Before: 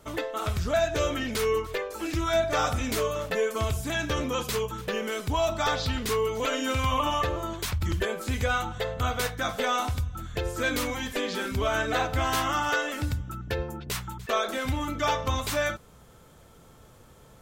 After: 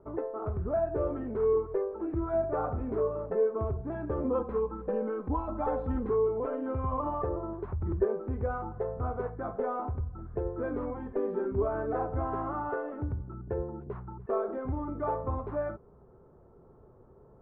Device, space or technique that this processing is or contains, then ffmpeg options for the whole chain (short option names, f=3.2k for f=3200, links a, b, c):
under water: -filter_complex "[0:a]asettb=1/sr,asplit=3[a][b][c];[a]atrim=end=4.244[d];[b]atrim=start=4.24:end=6.1,asetpts=PTS-STARTPTS,afade=t=in:d=0.004:c=qsin,afade=t=out:st=1.856:d=0.004:c=qsin,aecho=1:1:3.8:0.91,atrim=end_sample=82026[e];[c]atrim=start=6.096[f];[d][e]acrossfade=d=0.004:c1=hsin:c2=qsin[g];[g][f]acrossfade=d=0.004:c1=qsin:c2=hsin,lowpass=f=1.1k:w=0.5412,lowpass=f=1.1k:w=1.3066,equalizer=f=390:t=o:w=0.29:g=12,volume=-4.5dB"